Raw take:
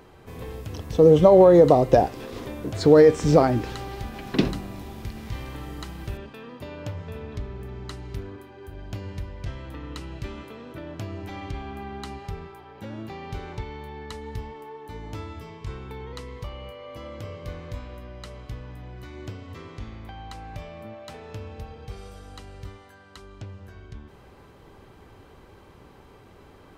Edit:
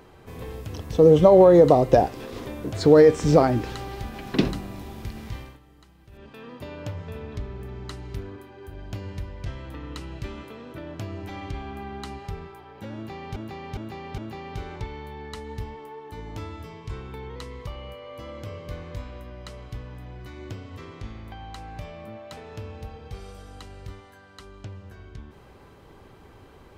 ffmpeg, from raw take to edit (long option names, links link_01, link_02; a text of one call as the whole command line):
ffmpeg -i in.wav -filter_complex "[0:a]asplit=6[link_01][link_02][link_03][link_04][link_05][link_06];[link_01]atrim=end=5.59,asetpts=PTS-STARTPTS,afade=type=out:start_time=5.14:duration=0.45:curve=qsin:silence=0.125893[link_07];[link_02]atrim=start=5.59:end=6.11,asetpts=PTS-STARTPTS,volume=-18dB[link_08];[link_03]atrim=start=6.11:end=13.362,asetpts=PTS-STARTPTS,afade=type=in:duration=0.45:curve=qsin:silence=0.125893[link_09];[link_04]atrim=start=12.948:end=13.362[link_10];[link_05]atrim=start=12.948:end=13.362[link_11];[link_06]atrim=start=12.948[link_12];[link_07][link_08][link_09]concat=n=3:v=0:a=1[link_13];[link_13][link_10]acrossfade=duration=0.004:curve1=hsin:curve2=hsin[link_14];[link_14][link_11]acrossfade=duration=0.004:curve1=hsin:curve2=hsin[link_15];[link_15][link_12]acrossfade=duration=0.004:curve1=hsin:curve2=hsin" out.wav